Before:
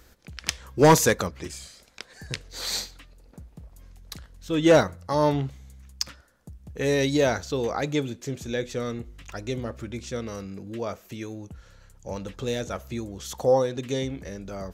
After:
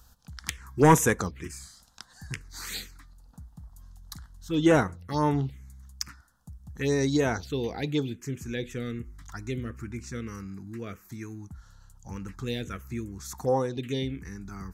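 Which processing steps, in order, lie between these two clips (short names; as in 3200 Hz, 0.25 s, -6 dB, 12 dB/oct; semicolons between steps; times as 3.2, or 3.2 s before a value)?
envelope phaser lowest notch 350 Hz, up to 4500 Hz, full sweep at -17.5 dBFS; bell 580 Hz -11.5 dB 0.38 oct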